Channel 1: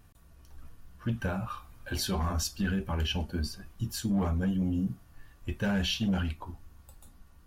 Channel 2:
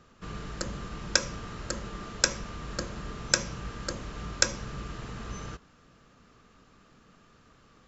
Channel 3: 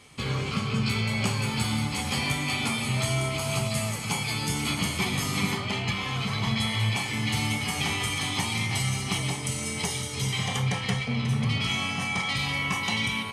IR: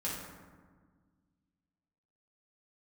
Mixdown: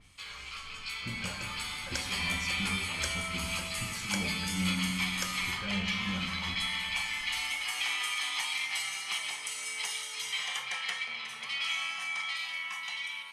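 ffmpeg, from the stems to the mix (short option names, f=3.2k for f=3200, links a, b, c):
-filter_complex "[0:a]lowpass=8.3k,acompressor=threshold=-36dB:ratio=3,acrossover=split=950[a][b];[a]aeval=exprs='val(0)*(1-0.7/2+0.7/2*cos(2*PI*2.6*n/s))':c=same[c];[b]aeval=exprs='val(0)*(1-0.7/2-0.7/2*cos(2*PI*2.6*n/s))':c=same[d];[c][d]amix=inputs=2:normalize=0,volume=-4dB,asplit=2[e][f];[f]volume=-6dB[g];[1:a]adelay=800,volume=-14.5dB[h];[2:a]highpass=1.5k,dynaudnorm=f=240:g=13:m=7dB,adynamicequalizer=threshold=0.0126:dfrequency=3700:dqfactor=0.7:tfrequency=3700:tqfactor=0.7:attack=5:release=100:ratio=0.375:range=3:mode=cutabove:tftype=highshelf,volume=-8dB,asplit=2[i][j];[j]volume=-12.5dB[k];[3:a]atrim=start_sample=2205[l];[g][k]amix=inputs=2:normalize=0[m];[m][l]afir=irnorm=-1:irlink=0[n];[e][h][i][n]amix=inputs=4:normalize=0"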